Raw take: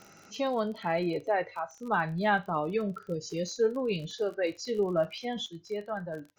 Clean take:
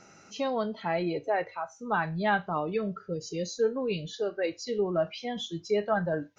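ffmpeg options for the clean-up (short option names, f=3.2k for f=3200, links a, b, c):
-af "adeclick=t=4,asetnsamples=n=441:p=0,asendcmd='5.46 volume volume 8dB',volume=0dB"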